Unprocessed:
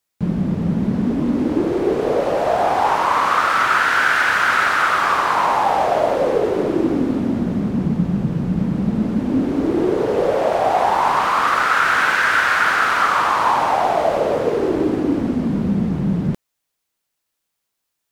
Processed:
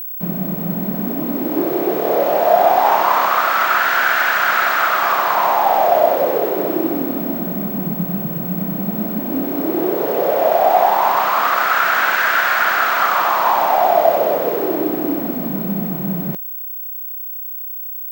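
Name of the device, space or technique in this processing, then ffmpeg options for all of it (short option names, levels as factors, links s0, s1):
old television with a line whistle: -filter_complex "[0:a]asettb=1/sr,asplit=3[s0][s1][s2];[s0]atrim=end=1.514[s3];[s1]atrim=start=1.51:end=3.27,asetpts=PTS-STARTPTS,afade=t=in:d=0.004:c=qsin,afade=t=out:st=1.756:d=0.004:c=qsin,asplit=2[s4][s5];[s5]adelay=25,volume=0.562[s6];[s4][s6]amix=inputs=2:normalize=0,atrim=end_sample=77616[s7];[s2]atrim=start=3.266[s8];[s3][s7]acrossfade=d=0.004:c1=hsin:c2=qsin[s9];[s9][s8]acrossfade=d=0.004:c1=qsin:c2=hsin,highpass=f=170:w=0.5412,highpass=f=170:w=1.3066,equalizer=f=240:t=q:w=4:g=-6,equalizer=f=450:t=q:w=4:g=-3,equalizer=f=680:t=q:w=4:g=7,lowpass=f=8600:w=0.5412,lowpass=f=8600:w=1.3066,aeval=exprs='val(0)+0.0562*sin(2*PI*15734*n/s)':c=same"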